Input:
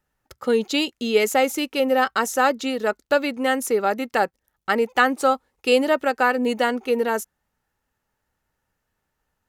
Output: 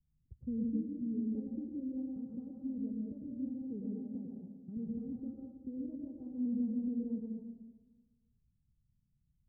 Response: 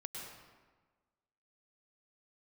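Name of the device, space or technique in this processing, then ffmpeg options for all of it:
club heard from the street: -filter_complex "[0:a]asettb=1/sr,asplit=3[link_01][link_02][link_03];[link_01]atrim=end=3.614[link_04];[link_02]atrim=start=3.61:end=4.77,asetpts=PTS-STARTPTS,afade=type=in:duration=0.004:curve=qsin,afade=type=out:start_time=1.156:duration=0.004:curve=qsin,highpass=110[link_05];[link_03]atrim=start=4.766[link_06];[link_04][link_05]acrossfade=duration=0.004:curve1=hsin:curve2=qsin[link_07];[link_07][link_06]acrossfade=duration=0.004:curve1=qsin:curve2=hsin,alimiter=limit=-14dB:level=0:latency=1:release=222,lowpass=frequency=180:width=0.5412,lowpass=frequency=180:width=1.3066[link_08];[1:a]atrim=start_sample=2205[link_09];[link_08][link_09]afir=irnorm=-1:irlink=0,volume=6.5dB"

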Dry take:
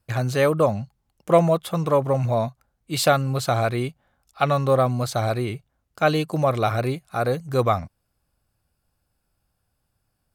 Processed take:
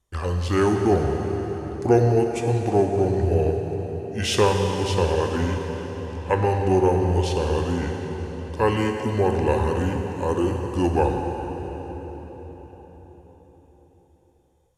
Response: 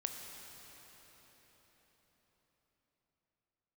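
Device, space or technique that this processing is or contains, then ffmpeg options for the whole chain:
slowed and reverbed: -filter_complex "[0:a]asetrate=30870,aresample=44100[link_01];[1:a]atrim=start_sample=2205[link_02];[link_01][link_02]afir=irnorm=-1:irlink=0"

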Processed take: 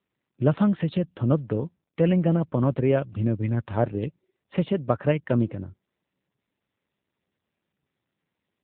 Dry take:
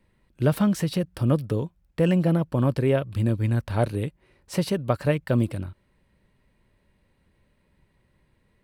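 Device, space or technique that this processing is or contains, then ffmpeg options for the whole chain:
mobile call with aggressive noise cancelling: -af "highpass=frequency=120:poles=1,afftdn=noise_reduction=23:noise_floor=-48,volume=1.5dB" -ar 8000 -c:a libopencore_amrnb -b:a 7950

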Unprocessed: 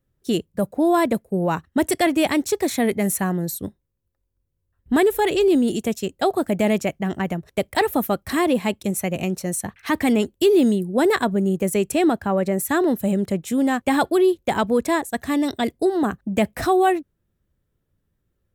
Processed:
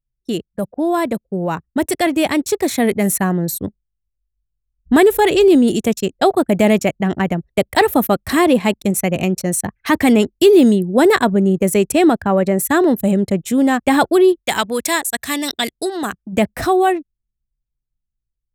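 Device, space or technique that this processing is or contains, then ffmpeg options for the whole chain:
voice memo with heavy noise removal: -filter_complex "[0:a]asplit=3[link_01][link_02][link_03];[link_01]afade=type=out:start_time=14.38:duration=0.02[link_04];[link_02]tiltshelf=frequency=1400:gain=-9,afade=type=in:start_time=14.38:duration=0.02,afade=type=out:start_time=16.32:duration=0.02[link_05];[link_03]afade=type=in:start_time=16.32:duration=0.02[link_06];[link_04][link_05][link_06]amix=inputs=3:normalize=0,anlmdn=1.58,dynaudnorm=framelen=460:gausssize=11:maxgain=9dB"

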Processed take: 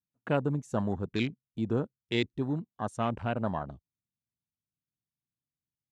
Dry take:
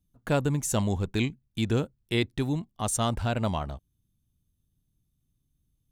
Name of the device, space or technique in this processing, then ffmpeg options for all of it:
over-cleaned archive recording: -af "highpass=130,lowpass=6900,afwtdn=0.0141,volume=-2dB"

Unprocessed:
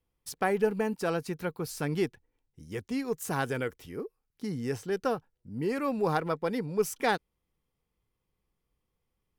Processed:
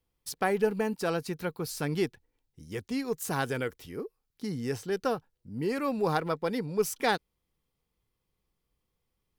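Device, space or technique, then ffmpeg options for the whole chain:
presence and air boost: -af "equalizer=frequency=4200:width_type=o:width=0.77:gain=4,highshelf=frequency=11000:gain=4"

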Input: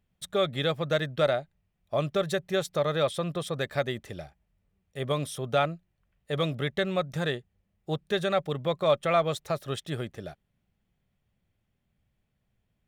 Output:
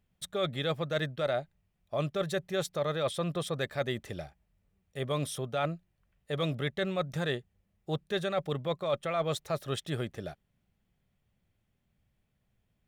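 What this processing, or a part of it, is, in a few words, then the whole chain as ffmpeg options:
compression on the reversed sound: -af "areverse,acompressor=threshold=-27dB:ratio=6,areverse"

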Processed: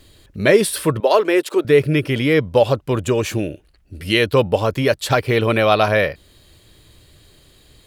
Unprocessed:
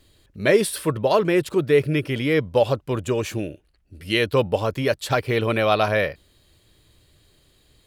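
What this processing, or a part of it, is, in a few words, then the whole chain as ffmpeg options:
parallel compression: -filter_complex "[0:a]asplit=2[link_01][link_02];[link_02]acompressor=threshold=-31dB:ratio=6,volume=-1.5dB[link_03];[link_01][link_03]amix=inputs=2:normalize=0,asettb=1/sr,asplit=3[link_04][link_05][link_06];[link_04]atrim=end=1.004[link_07];[link_05]atrim=start=1:end=1.65,asetpts=PTS-STARTPTS,afade=type=in:duration=0.004:curve=qsin,afade=type=out:start_time=0.646:duration=0.004:curve=qsin,highpass=frequency=310:width=0.5412,highpass=frequency=310:width=1.3066[link_08];[link_06]atrim=start=1.646[link_09];[link_07][link_08]acrossfade=duration=0.004:curve1=hsin:curve2=qsin[link_10];[link_10][link_09]acrossfade=duration=0.004:curve1=qsin:curve2=hsin,volume=3dB"

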